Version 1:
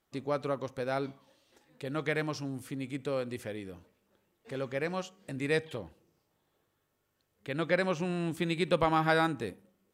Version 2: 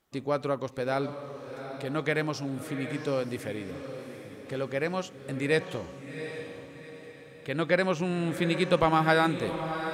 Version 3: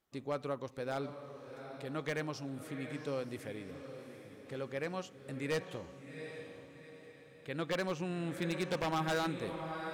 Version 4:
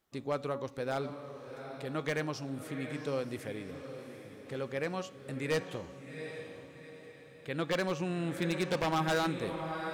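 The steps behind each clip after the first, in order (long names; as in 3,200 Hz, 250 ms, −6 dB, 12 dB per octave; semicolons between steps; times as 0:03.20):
feedback delay with all-pass diffusion 763 ms, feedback 44%, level −9.5 dB; level +3.5 dB
wave folding −18 dBFS; level −8.5 dB
hum removal 280.4 Hz, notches 30; level +3.5 dB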